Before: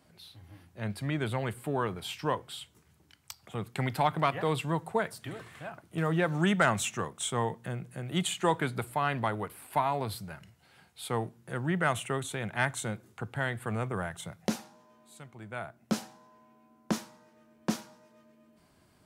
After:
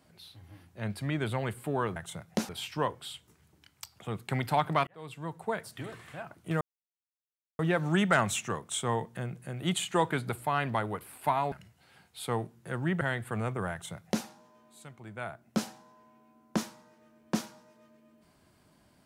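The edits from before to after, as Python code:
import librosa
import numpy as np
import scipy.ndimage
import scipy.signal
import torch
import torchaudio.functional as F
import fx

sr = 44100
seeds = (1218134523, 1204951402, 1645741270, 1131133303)

y = fx.edit(x, sr, fx.fade_in_span(start_s=4.34, length_s=0.95),
    fx.insert_silence(at_s=6.08, length_s=0.98),
    fx.cut(start_s=10.01, length_s=0.33),
    fx.cut(start_s=11.83, length_s=1.53),
    fx.duplicate(start_s=14.07, length_s=0.53, to_s=1.96), tone=tone)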